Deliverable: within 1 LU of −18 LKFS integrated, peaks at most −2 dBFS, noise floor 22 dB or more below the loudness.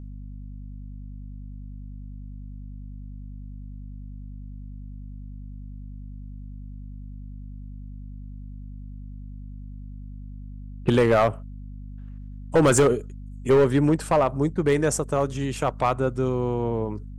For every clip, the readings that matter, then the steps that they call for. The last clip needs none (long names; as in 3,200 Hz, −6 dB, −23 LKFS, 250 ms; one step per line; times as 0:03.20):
share of clipped samples 0.5%; peaks flattened at −12.5 dBFS; mains hum 50 Hz; hum harmonics up to 250 Hz; level of the hum −35 dBFS; integrated loudness −22.5 LKFS; sample peak −12.5 dBFS; target loudness −18.0 LKFS
→ clipped peaks rebuilt −12.5 dBFS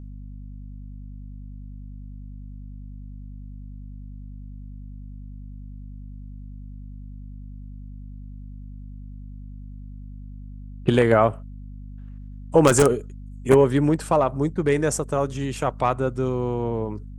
share of clipped samples 0.0%; mains hum 50 Hz; hum harmonics up to 250 Hz; level of the hum −35 dBFS
→ hum removal 50 Hz, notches 5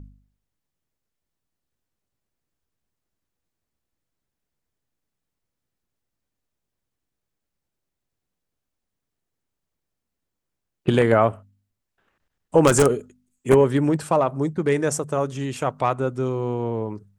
mains hum none found; integrated loudness −21.5 LKFS; sample peak −3.0 dBFS; target loudness −18.0 LKFS
→ level +3.5 dB
brickwall limiter −2 dBFS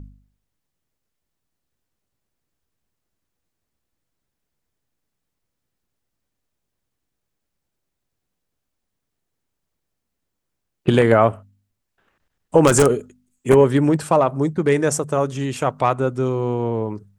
integrated loudness −18.5 LKFS; sample peak −2.0 dBFS; background noise floor −79 dBFS